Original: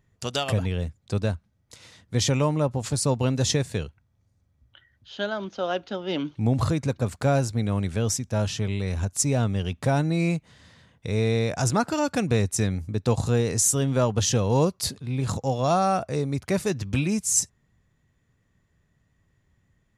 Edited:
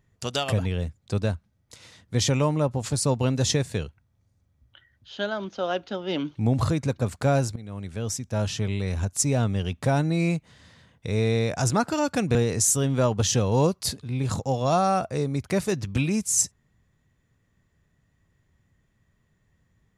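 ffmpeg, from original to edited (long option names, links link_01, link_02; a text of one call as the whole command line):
ffmpeg -i in.wav -filter_complex "[0:a]asplit=3[link_01][link_02][link_03];[link_01]atrim=end=7.56,asetpts=PTS-STARTPTS,afade=type=out:start_time=7.556:duration=0.004:curve=hsin:silence=0.133352[link_04];[link_02]atrim=start=7.56:end=12.352,asetpts=PTS-STARTPTS,afade=type=in:duration=0.98:silence=0.133352[link_05];[link_03]atrim=start=13.328[link_06];[link_04][link_05]concat=n=2:v=0:a=1[link_07];[link_07][link_06]acrossfade=duration=0.004:curve1=hsin:curve2=hsin" out.wav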